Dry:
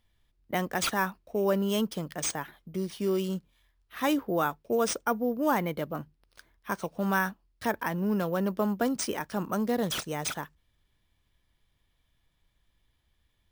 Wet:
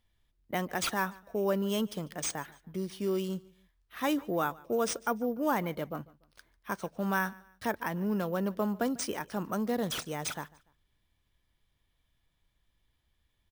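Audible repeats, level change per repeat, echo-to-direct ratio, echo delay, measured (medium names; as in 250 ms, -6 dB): 2, -9.0 dB, -22.5 dB, 146 ms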